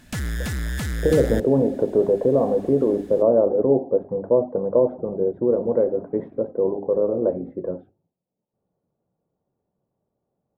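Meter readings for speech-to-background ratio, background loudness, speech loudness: 7.0 dB, -28.5 LUFS, -21.5 LUFS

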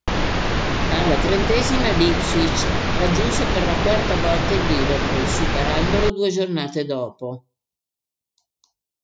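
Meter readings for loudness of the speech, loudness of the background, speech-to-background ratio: -23.0 LUFS, -22.0 LUFS, -1.0 dB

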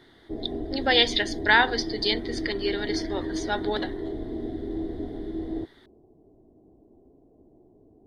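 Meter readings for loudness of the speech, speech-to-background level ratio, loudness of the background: -25.0 LUFS, 8.5 dB, -33.5 LUFS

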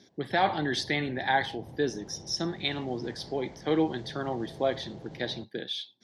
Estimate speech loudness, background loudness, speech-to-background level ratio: -31.0 LUFS, -47.5 LUFS, 16.5 dB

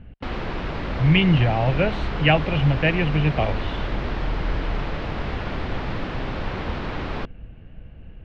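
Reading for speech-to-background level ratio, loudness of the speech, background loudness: 7.5 dB, -22.5 LUFS, -30.0 LUFS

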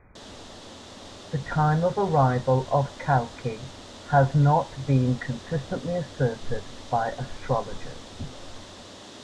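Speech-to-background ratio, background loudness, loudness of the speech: 17.5 dB, -43.0 LUFS, -25.5 LUFS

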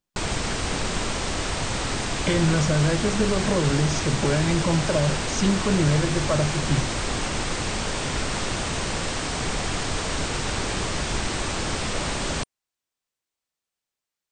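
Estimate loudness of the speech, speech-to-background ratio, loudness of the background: -24.0 LUFS, 3.0 dB, -27.0 LUFS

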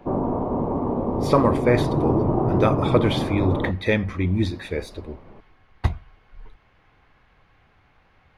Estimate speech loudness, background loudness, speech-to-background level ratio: -24.0 LUFS, -24.0 LUFS, 0.0 dB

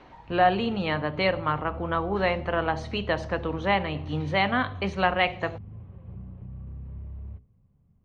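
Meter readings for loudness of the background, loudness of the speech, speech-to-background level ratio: -41.5 LUFS, -26.5 LUFS, 15.0 dB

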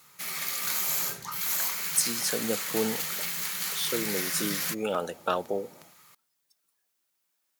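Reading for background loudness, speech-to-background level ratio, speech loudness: -29.0 LUFS, -2.0 dB, -31.0 LUFS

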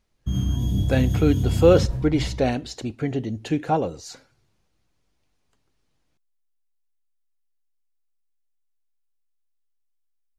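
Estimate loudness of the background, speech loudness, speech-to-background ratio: -25.5 LUFS, -23.0 LUFS, 2.5 dB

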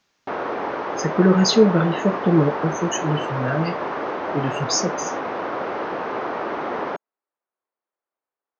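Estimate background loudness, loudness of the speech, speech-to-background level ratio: -27.0 LUFS, -21.0 LUFS, 6.0 dB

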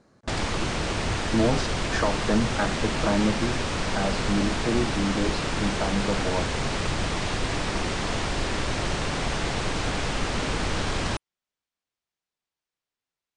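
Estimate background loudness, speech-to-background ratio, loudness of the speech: -28.0 LUFS, -0.5 dB, -28.5 LUFS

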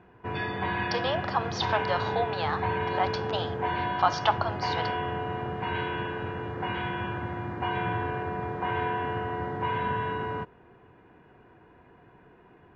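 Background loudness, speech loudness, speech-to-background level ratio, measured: -31.0 LUFS, -30.5 LUFS, 0.5 dB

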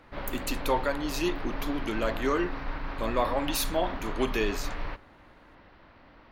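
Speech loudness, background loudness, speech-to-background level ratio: -31.0 LUFS, -38.0 LUFS, 7.0 dB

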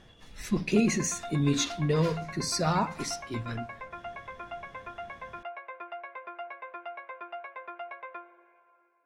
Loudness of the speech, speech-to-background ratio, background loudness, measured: -29.0 LUFS, 13.0 dB, -42.0 LUFS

